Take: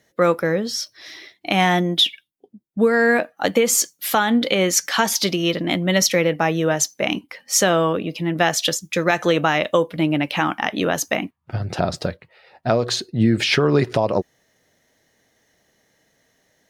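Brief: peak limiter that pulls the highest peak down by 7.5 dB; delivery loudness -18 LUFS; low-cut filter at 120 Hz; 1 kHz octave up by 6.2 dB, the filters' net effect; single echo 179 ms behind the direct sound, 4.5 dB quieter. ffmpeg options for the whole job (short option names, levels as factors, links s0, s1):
-af "highpass=120,equalizer=f=1000:t=o:g=8.5,alimiter=limit=0.473:level=0:latency=1,aecho=1:1:179:0.596,volume=1.06"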